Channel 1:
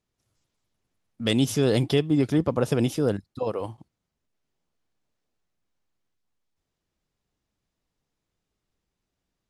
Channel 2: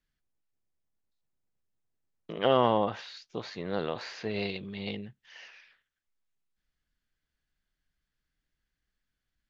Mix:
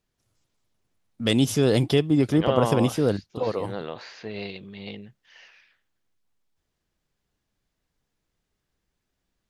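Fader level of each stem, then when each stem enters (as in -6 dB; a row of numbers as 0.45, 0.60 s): +1.5, -1.5 dB; 0.00, 0.00 s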